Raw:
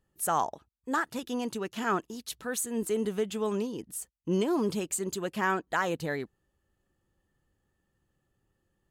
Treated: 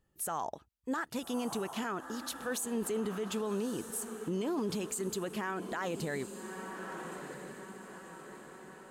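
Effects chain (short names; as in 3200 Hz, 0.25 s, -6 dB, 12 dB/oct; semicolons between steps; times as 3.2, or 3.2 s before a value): diffused feedback echo 1.262 s, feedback 50%, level -13.5 dB; limiter -26.5 dBFS, peak gain reduction 10.5 dB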